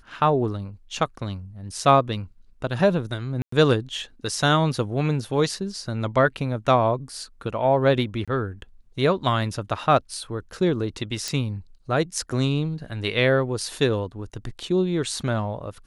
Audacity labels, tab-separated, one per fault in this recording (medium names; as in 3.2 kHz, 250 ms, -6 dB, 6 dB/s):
3.420000	3.520000	dropout 104 ms
8.250000	8.280000	dropout 26 ms
11.280000	11.280000	pop -13 dBFS